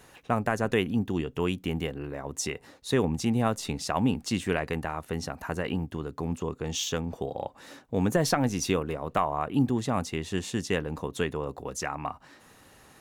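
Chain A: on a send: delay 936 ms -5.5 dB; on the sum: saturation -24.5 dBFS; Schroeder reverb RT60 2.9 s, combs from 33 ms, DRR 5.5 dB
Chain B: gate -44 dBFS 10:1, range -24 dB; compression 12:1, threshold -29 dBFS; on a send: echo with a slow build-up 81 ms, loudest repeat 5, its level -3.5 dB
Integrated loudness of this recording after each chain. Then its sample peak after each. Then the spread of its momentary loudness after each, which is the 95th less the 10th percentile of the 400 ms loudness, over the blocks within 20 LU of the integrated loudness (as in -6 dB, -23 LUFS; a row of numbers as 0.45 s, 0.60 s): -31.0 LUFS, -28.5 LUFS; -18.0 dBFS, -13.5 dBFS; 5 LU, 3 LU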